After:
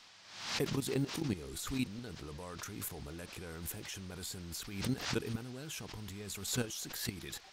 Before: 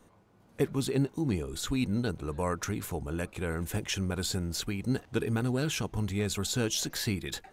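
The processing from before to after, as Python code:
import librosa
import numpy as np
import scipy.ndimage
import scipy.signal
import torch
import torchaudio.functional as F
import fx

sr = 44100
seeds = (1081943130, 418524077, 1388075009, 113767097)

y = fx.low_shelf(x, sr, hz=74.0, db=-3.0)
y = fx.level_steps(y, sr, step_db=14)
y = fx.dmg_noise_band(y, sr, seeds[0], low_hz=620.0, high_hz=5400.0, level_db=-57.0)
y = fx.high_shelf(y, sr, hz=8700.0, db=10.5)
y = fx.pre_swell(y, sr, db_per_s=73.0)
y = F.gain(torch.from_numpy(y), -3.5).numpy()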